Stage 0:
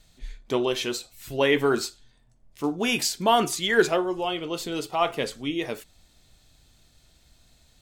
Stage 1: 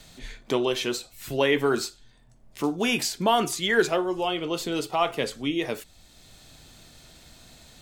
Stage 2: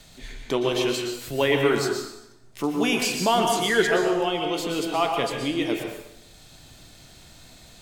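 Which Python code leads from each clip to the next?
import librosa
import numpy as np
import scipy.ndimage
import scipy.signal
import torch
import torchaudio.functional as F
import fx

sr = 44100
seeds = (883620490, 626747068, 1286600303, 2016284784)

y1 = fx.band_squash(x, sr, depth_pct=40)
y2 = fx.rev_plate(y1, sr, seeds[0], rt60_s=0.87, hf_ratio=0.9, predelay_ms=105, drr_db=2.5)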